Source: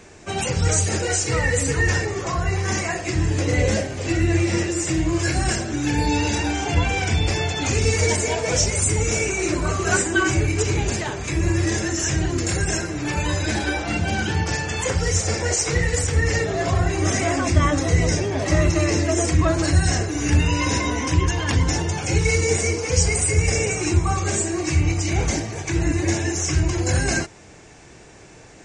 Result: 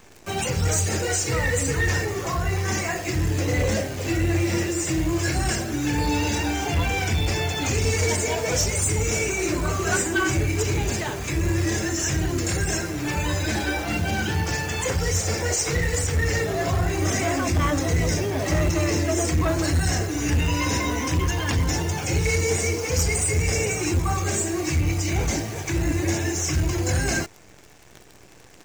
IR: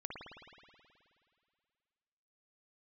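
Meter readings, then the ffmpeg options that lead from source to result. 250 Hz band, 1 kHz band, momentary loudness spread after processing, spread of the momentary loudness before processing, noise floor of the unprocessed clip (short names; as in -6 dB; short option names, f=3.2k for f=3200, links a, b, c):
-2.0 dB, -2.0 dB, 3 LU, 4 LU, -45 dBFS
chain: -af "aeval=exprs='0.596*(cos(1*acos(clip(val(0)/0.596,-1,1)))-cos(1*PI/2))+0.133*(cos(5*acos(clip(val(0)/0.596,-1,1)))-cos(5*PI/2))':c=same,acrusher=bits=6:dc=4:mix=0:aa=0.000001,volume=-7.5dB"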